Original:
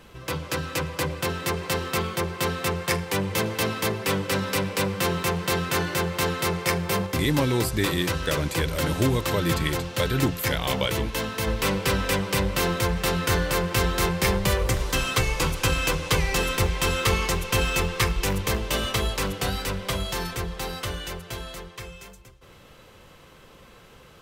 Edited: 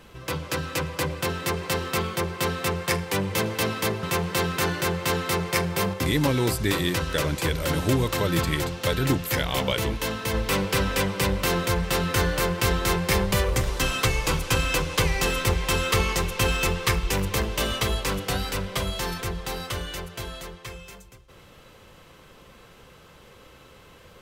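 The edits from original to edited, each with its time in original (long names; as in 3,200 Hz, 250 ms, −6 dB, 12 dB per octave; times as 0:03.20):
0:04.03–0:05.16: remove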